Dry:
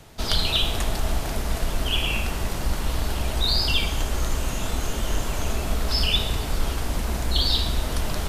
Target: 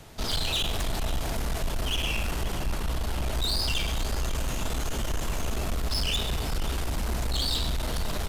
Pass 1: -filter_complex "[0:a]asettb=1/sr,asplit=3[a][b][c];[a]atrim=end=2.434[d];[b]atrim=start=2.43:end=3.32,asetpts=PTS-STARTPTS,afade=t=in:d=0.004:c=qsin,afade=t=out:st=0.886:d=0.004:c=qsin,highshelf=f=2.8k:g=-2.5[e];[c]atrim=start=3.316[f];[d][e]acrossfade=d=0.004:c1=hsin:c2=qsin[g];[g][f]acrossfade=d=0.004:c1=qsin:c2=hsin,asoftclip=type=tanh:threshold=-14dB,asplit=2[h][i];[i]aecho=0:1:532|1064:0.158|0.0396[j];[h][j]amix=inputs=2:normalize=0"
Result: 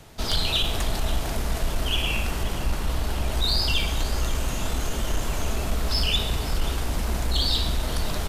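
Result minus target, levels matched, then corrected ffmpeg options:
soft clip: distortion -10 dB
-filter_complex "[0:a]asettb=1/sr,asplit=3[a][b][c];[a]atrim=end=2.434[d];[b]atrim=start=2.43:end=3.32,asetpts=PTS-STARTPTS,afade=t=in:d=0.004:c=qsin,afade=t=out:st=0.886:d=0.004:c=qsin,highshelf=f=2.8k:g=-2.5[e];[c]atrim=start=3.316[f];[d][e]acrossfade=d=0.004:c1=hsin:c2=qsin[g];[g][f]acrossfade=d=0.004:c1=qsin:c2=hsin,asoftclip=type=tanh:threshold=-23.5dB,asplit=2[h][i];[i]aecho=0:1:532|1064:0.158|0.0396[j];[h][j]amix=inputs=2:normalize=0"

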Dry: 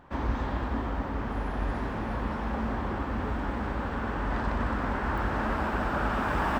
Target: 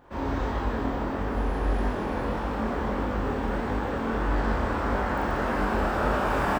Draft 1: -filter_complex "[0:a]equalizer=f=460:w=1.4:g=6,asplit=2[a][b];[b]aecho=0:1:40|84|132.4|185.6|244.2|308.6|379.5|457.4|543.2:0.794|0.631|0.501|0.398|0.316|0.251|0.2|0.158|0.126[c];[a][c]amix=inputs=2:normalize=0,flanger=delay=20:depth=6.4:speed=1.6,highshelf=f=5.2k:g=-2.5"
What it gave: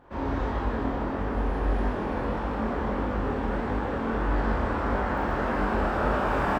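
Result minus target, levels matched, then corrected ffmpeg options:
8000 Hz band -6.5 dB
-filter_complex "[0:a]equalizer=f=460:w=1.4:g=6,asplit=2[a][b];[b]aecho=0:1:40|84|132.4|185.6|244.2|308.6|379.5|457.4|543.2:0.794|0.631|0.501|0.398|0.316|0.251|0.2|0.158|0.126[c];[a][c]amix=inputs=2:normalize=0,flanger=delay=20:depth=6.4:speed=1.6,highshelf=f=5.2k:g=7.5"

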